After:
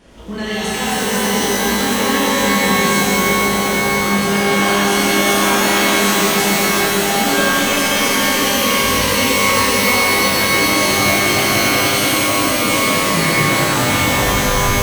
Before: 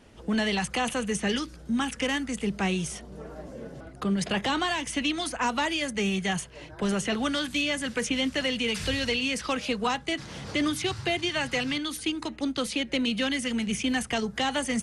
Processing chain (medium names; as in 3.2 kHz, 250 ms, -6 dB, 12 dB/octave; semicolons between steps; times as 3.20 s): tape stop on the ending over 2.50 s; in parallel at -0.5 dB: compressor with a negative ratio -35 dBFS, ratio -1; on the sum: echo with a slow build-up 94 ms, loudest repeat 8, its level -15 dB; pitch-shifted reverb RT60 3.9 s, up +12 st, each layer -2 dB, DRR -9.5 dB; trim -5 dB